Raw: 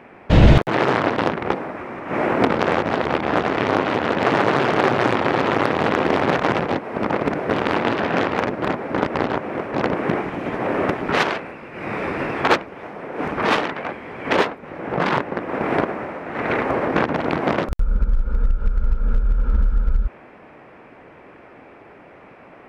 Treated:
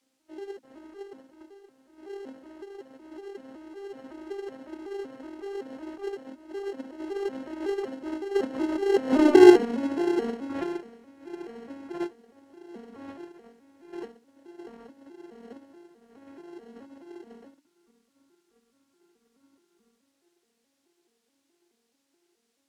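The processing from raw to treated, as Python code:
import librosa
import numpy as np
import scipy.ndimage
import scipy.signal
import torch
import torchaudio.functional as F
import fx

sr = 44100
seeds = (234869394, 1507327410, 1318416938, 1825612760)

p1 = fx.vocoder_arp(x, sr, chord='minor triad', root=59, every_ms=200)
p2 = fx.doppler_pass(p1, sr, speed_mps=23, closest_m=4.3, pass_at_s=9.37)
p3 = fx.peak_eq(p2, sr, hz=390.0, db=12.0, octaves=0.48)
p4 = fx.hum_notches(p3, sr, base_hz=60, count=5)
p5 = fx.sample_hold(p4, sr, seeds[0], rate_hz=1200.0, jitter_pct=0)
p6 = p4 + (p5 * librosa.db_to_amplitude(-7.0))
p7 = fx.dmg_noise_colour(p6, sr, seeds[1], colour='blue', level_db=-68.0)
y = fx.air_absorb(p7, sr, metres=65.0)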